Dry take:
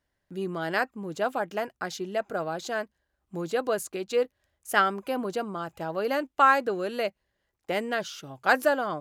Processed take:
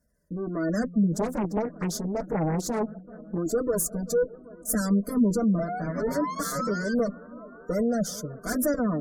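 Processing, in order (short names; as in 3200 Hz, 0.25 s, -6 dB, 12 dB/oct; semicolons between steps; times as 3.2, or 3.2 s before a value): 5.58–6.94 painted sound rise 650–1600 Hz -29 dBFS; tube stage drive 33 dB, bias 0.6; bell 320 Hz +14.5 dB 1.6 oct; notch 3900 Hz, Q 6.7; notch comb 270 Hz; analogue delay 0.385 s, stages 4096, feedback 78%, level -19.5 dB; flange 0.25 Hz, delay 1.3 ms, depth 6.3 ms, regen -29%; tone controls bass +11 dB, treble +13 dB; fixed phaser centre 550 Hz, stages 8; spectral gate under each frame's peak -30 dB strong; 1.14–3.38 Doppler distortion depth 0.75 ms; gain +7.5 dB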